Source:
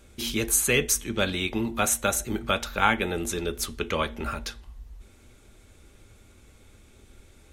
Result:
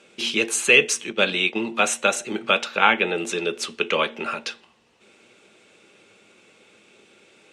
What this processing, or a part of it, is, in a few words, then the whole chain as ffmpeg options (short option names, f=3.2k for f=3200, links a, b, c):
television speaker: -filter_complex "[0:a]asettb=1/sr,asplit=3[a][b][c];[a]atrim=end=1.104[d];[b]atrim=start=1.1:end=1.56,asetpts=PTS-STARTPTS,afade=t=in:d=0.004:c=qsin,afade=t=out:st=0.456:d=0.004:c=qsin,agate=range=-9dB:threshold=-30dB:ratio=16:detection=peak[e];[c]atrim=start=1.556[f];[d][e]acrossfade=d=0.004:c1=hsin:c2=qsin[g];[g][f]acrossfade=d=0.004:c1=qsin:c2=hsin,asettb=1/sr,asplit=3[h][i][j];[h]atrim=end=2.774[k];[i]atrim=start=2.77:end=3.18,asetpts=PTS-STARTPTS,afade=t=in:d=0.004:c=qsin,afade=t=out:st=0.406:d=0.004:c=qsin,acrossover=split=5200[l][m];[m]acompressor=threshold=-58dB:ratio=4:attack=1:release=60[n];[l][n]amix=inputs=2:normalize=0[o];[j]atrim=start=3.176[p];[k][o]acrossfade=d=0.004:c1=hsin:c2=qsin[q];[q][p]acrossfade=d=0.004:c1=qsin:c2=hsin,highpass=f=190:w=0.5412,highpass=f=190:w=1.3066,equalizer=f=260:t=q:w=4:g=-8,equalizer=f=480:t=q:w=4:g=3,equalizer=f=2.7k:t=q:w=4:g=9,equalizer=f=6.6k:t=q:w=4:g=-4,lowpass=f=7.9k:w=0.5412,lowpass=f=7.9k:w=1.3066,volume=4dB"